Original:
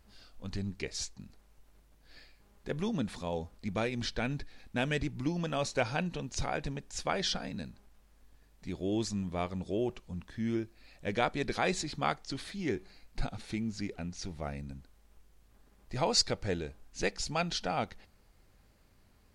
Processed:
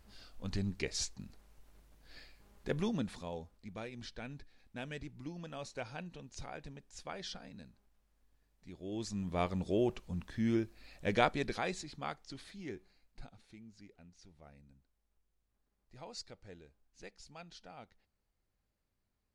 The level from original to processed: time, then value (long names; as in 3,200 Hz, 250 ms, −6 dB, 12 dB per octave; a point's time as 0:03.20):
0:02.73 +0.5 dB
0:03.68 −12 dB
0:08.78 −12 dB
0:09.42 +1 dB
0:11.23 +1 dB
0:11.82 −9.5 dB
0:12.56 −9.5 dB
0:13.54 −19.5 dB